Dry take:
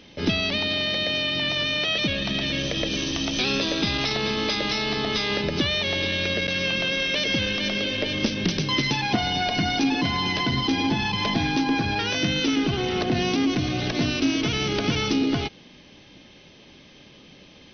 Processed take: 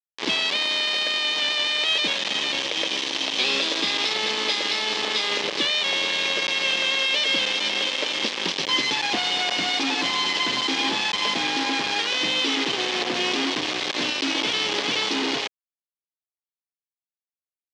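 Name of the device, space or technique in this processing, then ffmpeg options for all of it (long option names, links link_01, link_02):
hand-held game console: -af "acrusher=bits=3:mix=0:aa=0.000001,highpass=430,equalizer=frequency=670:width_type=q:width=4:gain=-5,equalizer=frequency=1400:width_type=q:width=4:gain=-6,equalizer=frequency=3300:width_type=q:width=4:gain=3,lowpass=frequency=5500:width=0.5412,lowpass=frequency=5500:width=1.3066,volume=1.5dB"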